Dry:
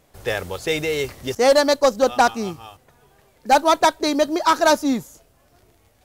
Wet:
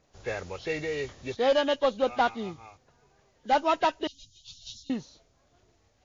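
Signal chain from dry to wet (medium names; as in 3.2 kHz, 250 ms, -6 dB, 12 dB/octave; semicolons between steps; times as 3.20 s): knee-point frequency compression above 1.5 kHz 1.5:1; 4.07–4.90 s: inverse Chebyshev band-stop 300–1900 Hz, stop band 50 dB; trim -8.5 dB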